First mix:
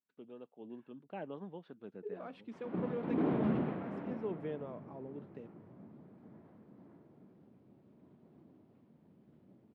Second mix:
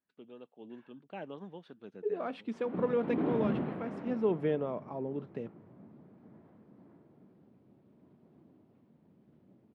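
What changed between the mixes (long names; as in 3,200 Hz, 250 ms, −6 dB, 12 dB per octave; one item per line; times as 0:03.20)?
first voice: remove low-pass filter 1,800 Hz 6 dB per octave
second voice +10.0 dB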